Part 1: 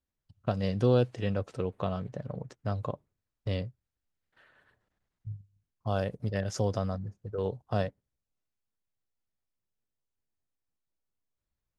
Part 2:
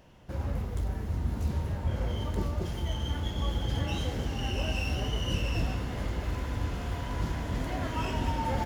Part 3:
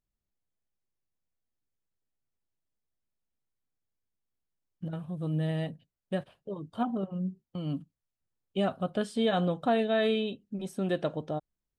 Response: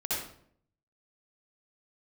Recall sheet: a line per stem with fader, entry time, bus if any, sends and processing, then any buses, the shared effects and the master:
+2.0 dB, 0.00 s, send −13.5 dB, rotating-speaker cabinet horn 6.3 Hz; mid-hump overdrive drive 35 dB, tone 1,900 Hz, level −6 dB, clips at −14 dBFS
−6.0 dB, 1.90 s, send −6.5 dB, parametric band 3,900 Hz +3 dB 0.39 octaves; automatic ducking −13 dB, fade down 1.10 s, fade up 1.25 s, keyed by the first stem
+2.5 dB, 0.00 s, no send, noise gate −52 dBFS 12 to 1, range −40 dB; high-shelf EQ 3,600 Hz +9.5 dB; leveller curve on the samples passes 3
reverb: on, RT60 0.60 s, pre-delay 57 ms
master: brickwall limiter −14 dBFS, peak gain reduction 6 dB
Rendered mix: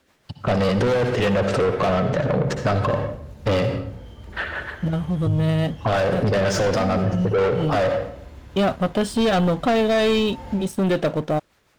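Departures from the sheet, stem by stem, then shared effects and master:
stem 1 +2.0 dB → +9.5 dB
stem 2: send −6.5 dB → −12.5 dB
stem 3: missing high-shelf EQ 3,600 Hz +9.5 dB

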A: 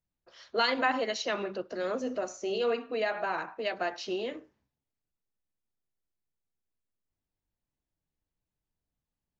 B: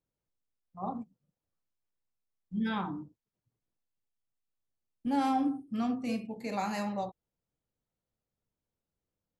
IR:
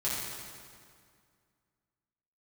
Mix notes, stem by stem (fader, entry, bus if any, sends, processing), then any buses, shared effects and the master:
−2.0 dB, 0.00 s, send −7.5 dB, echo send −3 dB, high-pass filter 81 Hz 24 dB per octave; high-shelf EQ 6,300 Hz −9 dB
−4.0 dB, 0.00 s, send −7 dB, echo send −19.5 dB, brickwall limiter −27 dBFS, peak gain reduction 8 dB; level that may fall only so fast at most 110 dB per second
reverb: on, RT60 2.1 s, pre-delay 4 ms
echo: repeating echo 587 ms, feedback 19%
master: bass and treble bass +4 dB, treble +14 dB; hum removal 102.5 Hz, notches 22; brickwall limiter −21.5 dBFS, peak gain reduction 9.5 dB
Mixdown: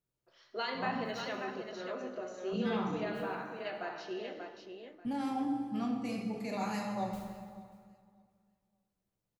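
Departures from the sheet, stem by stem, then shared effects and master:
stem A −2.0 dB → −12.0 dB
master: missing bass and treble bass +4 dB, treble +14 dB

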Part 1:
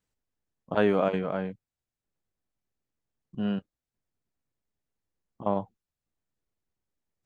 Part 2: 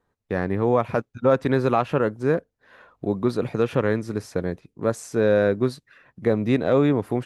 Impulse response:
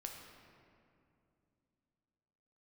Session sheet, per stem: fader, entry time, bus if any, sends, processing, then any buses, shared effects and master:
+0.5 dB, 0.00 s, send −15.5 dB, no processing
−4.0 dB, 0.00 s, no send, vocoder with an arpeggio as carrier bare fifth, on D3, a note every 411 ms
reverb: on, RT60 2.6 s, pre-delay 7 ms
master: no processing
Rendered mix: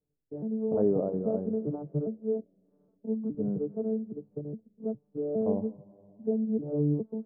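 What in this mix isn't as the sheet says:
stem 1: send −15.5 dB → −7.5 dB
master: extra transistor ladder low-pass 620 Hz, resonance 25%

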